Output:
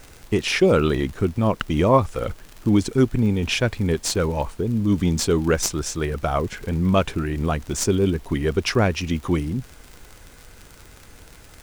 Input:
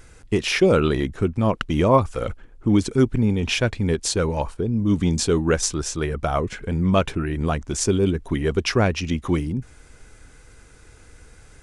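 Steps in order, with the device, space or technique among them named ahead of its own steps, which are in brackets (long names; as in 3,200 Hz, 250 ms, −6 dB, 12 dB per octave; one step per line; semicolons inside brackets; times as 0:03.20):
record under a worn stylus (stylus tracing distortion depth 0.035 ms; surface crackle 65 per second −30 dBFS; pink noise bed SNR 29 dB)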